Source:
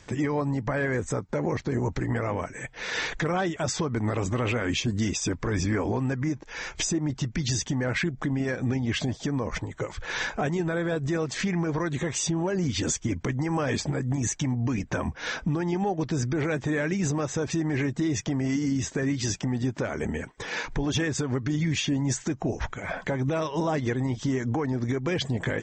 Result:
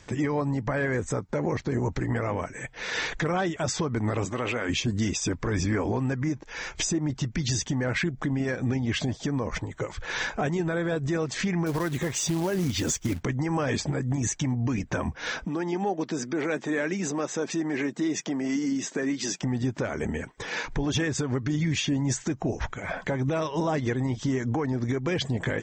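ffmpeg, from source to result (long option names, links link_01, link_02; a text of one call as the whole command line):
ffmpeg -i in.wav -filter_complex "[0:a]asettb=1/sr,asplit=3[link_01][link_02][link_03];[link_01]atrim=end=4.254[link_04];[link_02]atrim=start=4.25:end=4.69,asetpts=PTS-STARTPTS,afade=type=in:duration=0.004:curve=qsin,afade=type=out:start_time=0.436:duration=0.004:curve=qsin,highpass=frequency=290:poles=1[link_05];[link_03]atrim=start=4.686[link_06];[link_04][link_05]acrossfade=duration=0.004:curve1=hsin:curve2=qsin[link_07];[link_07][link_06]acrossfade=duration=0.004:curve1=qsin:curve2=hsin,asettb=1/sr,asplit=3[link_08][link_09][link_10];[link_08]atrim=end=11.664[link_11];[link_09]atrim=start=11.66:end=13.22,asetpts=PTS-STARTPTS,afade=type=in:duration=0.004:curve=qsin,afade=type=out:start_time=1.556:duration=0.004:curve=qsin,acrusher=bits=4:mode=log:mix=0:aa=0.000001[link_12];[link_10]atrim=start=13.216[link_13];[link_11][link_12]acrossfade=duration=0.004:curve1=hsin:curve2=qsin[link_14];[link_14][link_13]acrossfade=duration=0.004:curve1=qsin:curve2=hsin,asettb=1/sr,asplit=3[link_15][link_16][link_17];[link_15]atrim=end=15.454[link_18];[link_16]atrim=start=15.45:end=19.42,asetpts=PTS-STARTPTS,afade=type=in:duration=0.004:curve=qsin,afade=type=out:start_time=3.966:duration=0.004:curve=qsin,highpass=frequency=200:width=0.5412,highpass=frequency=200:width=1.3066[link_19];[link_17]atrim=start=19.416[link_20];[link_18][link_19]acrossfade=duration=0.004:curve1=hsin:curve2=qsin[link_21];[link_21][link_20]acrossfade=duration=0.004:curve1=qsin:curve2=hsin" out.wav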